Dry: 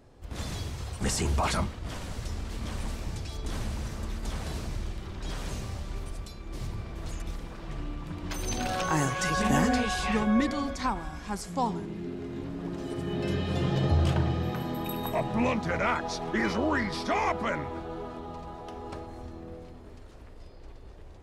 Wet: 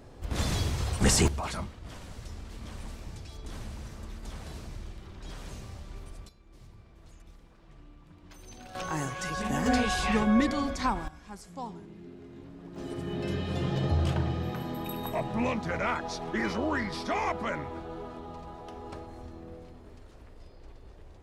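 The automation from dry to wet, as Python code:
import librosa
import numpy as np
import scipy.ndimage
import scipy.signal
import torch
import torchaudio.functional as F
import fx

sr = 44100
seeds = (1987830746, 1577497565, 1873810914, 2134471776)

y = fx.gain(x, sr, db=fx.steps((0.0, 6.0), (1.28, -7.0), (6.29, -16.5), (8.75, -6.0), (9.66, 1.0), (11.08, -10.5), (12.76, -2.5)))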